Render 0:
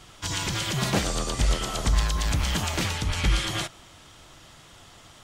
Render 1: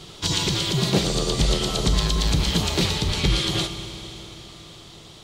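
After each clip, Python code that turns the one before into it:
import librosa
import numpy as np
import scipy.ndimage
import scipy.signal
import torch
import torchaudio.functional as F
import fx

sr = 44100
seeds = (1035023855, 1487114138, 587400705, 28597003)

y = fx.graphic_eq_15(x, sr, hz=(160, 400, 1600, 4000), db=(9, 10, -4, 10))
y = fx.rider(y, sr, range_db=10, speed_s=0.5)
y = fx.rev_schroeder(y, sr, rt60_s=3.9, comb_ms=26, drr_db=8.0)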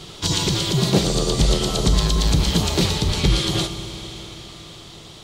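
y = fx.dynamic_eq(x, sr, hz=2300.0, q=0.73, threshold_db=-39.0, ratio=4.0, max_db=-4)
y = F.gain(torch.from_numpy(y), 3.5).numpy()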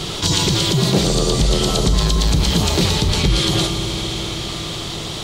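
y = fx.env_flatten(x, sr, amount_pct=50)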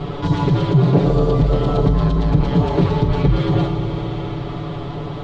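y = scipy.signal.sosfilt(scipy.signal.butter(2, 1200.0, 'lowpass', fs=sr, output='sos'), x)
y = y + 0.88 * np.pad(y, (int(7.0 * sr / 1000.0), 0))[:len(y)]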